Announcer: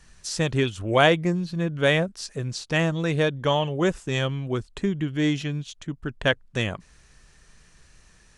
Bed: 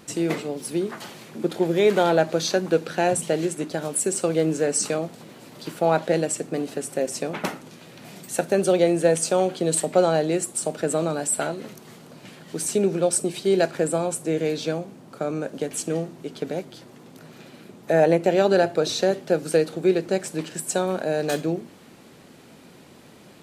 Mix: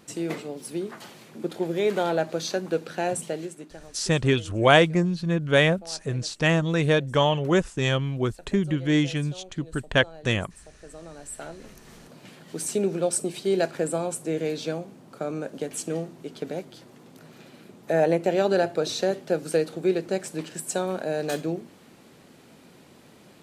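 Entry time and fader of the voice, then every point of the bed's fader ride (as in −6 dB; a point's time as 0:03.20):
3.70 s, +1.5 dB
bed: 0:03.22 −5.5 dB
0:04.15 −24 dB
0:10.75 −24 dB
0:11.97 −3.5 dB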